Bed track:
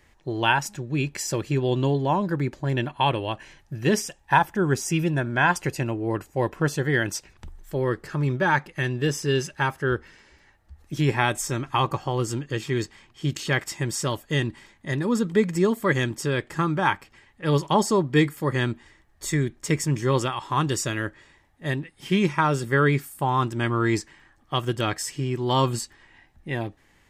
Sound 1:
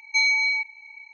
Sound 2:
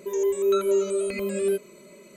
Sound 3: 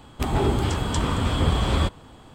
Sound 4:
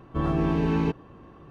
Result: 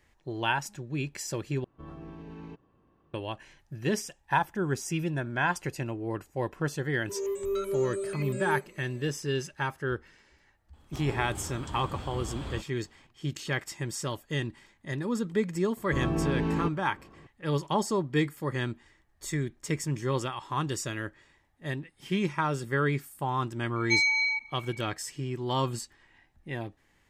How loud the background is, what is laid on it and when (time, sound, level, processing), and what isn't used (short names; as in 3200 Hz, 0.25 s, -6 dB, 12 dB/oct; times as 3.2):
bed track -7 dB
1.64 replace with 4 -17.5 dB + limiter -18.5 dBFS
7.03 add 2 -7.5 dB, fades 0.10 s + soft clip -15 dBFS
10.73 add 3 -16.5 dB
15.77 add 4 -4.5 dB
23.76 add 1 -4 dB